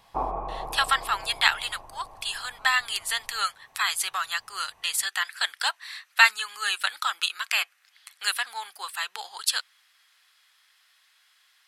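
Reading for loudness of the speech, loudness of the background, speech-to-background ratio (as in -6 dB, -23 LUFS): -26.0 LUFS, -37.5 LUFS, 11.5 dB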